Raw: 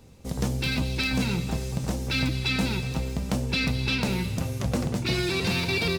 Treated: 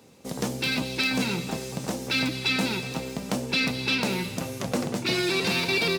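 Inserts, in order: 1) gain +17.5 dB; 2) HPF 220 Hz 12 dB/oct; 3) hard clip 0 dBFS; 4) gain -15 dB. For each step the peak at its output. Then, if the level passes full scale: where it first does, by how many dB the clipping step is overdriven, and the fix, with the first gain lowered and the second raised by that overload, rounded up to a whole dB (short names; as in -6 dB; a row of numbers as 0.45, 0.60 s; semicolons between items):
+1.0, +3.0, 0.0, -15.0 dBFS; step 1, 3.0 dB; step 1 +14.5 dB, step 4 -12 dB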